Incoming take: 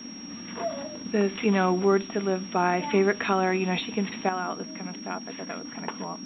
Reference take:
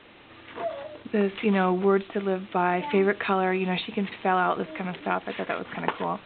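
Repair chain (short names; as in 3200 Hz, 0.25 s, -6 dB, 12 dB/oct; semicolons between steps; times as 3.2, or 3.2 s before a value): notch 5600 Hz, Q 30; noise print and reduce 8 dB; gain 0 dB, from 4.29 s +7.5 dB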